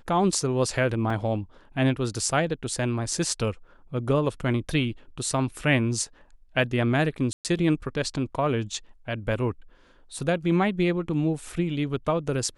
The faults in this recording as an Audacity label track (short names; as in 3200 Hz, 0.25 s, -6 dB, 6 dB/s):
1.100000	1.100000	gap 3.2 ms
7.330000	7.450000	gap 0.118 s